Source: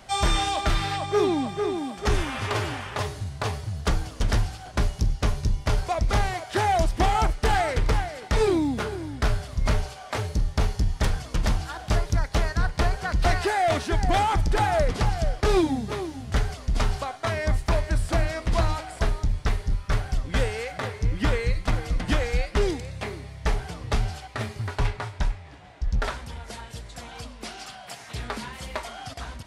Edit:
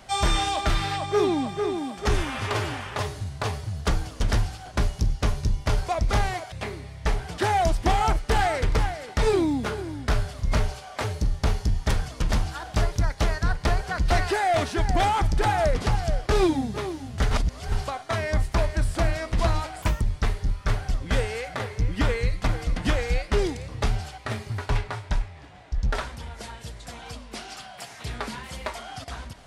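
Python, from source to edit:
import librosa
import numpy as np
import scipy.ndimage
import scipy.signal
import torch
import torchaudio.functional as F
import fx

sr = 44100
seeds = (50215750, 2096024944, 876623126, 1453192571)

y = fx.edit(x, sr, fx.reverse_span(start_s=16.45, length_s=0.41),
    fx.speed_span(start_s=18.96, length_s=0.29, speed=1.48),
    fx.move(start_s=22.92, length_s=0.86, to_s=6.52), tone=tone)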